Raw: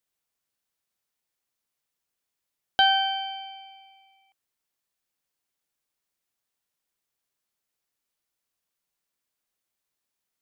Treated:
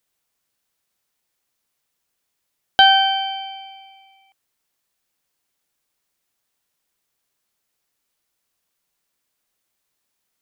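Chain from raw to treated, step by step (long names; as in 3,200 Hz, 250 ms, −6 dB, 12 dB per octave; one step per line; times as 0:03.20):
0:02.94–0:03.89: parametric band 81 Hz +12 dB 0.82 octaves
level +8 dB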